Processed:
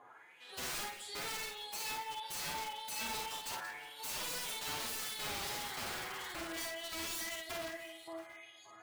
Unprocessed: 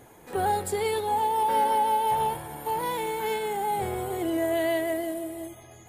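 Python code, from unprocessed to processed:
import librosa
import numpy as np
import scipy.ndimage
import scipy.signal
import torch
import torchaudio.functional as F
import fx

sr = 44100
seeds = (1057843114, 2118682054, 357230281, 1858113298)

y = fx.rider(x, sr, range_db=4, speed_s=0.5)
y = fx.filter_lfo_bandpass(y, sr, shape='saw_up', hz=2.6, low_hz=990.0, high_hz=4700.0, q=4.9)
y = fx.spec_paint(y, sr, seeds[0], shape='noise', start_s=3.55, length_s=0.67, low_hz=830.0, high_hz=2200.0, level_db=-52.0)
y = (np.mod(10.0 ** (41.0 / 20.0) * y + 1.0, 2.0) - 1.0) / 10.0 ** (41.0 / 20.0)
y = fx.stretch_vocoder(y, sr, factor=1.5)
y = fx.echo_multitap(y, sr, ms=(52, 183, 681), db=(-4.0, -13.5, -19.5))
y = F.gain(torch.from_numpy(y), 4.5).numpy()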